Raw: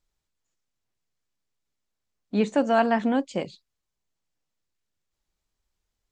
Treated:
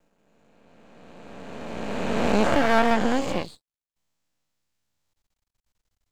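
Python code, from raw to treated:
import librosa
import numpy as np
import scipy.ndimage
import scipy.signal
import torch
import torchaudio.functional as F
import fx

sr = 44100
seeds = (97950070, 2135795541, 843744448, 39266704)

y = fx.spec_swells(x, sr, rise_s=2.79)
y = fx.peak_eq(y, sr, hz=390.0, db=-6.5, octaves=0.31)
y = np.maximum(y, 0.0)
y = y * 10.0 ** (2.0 / 20.0)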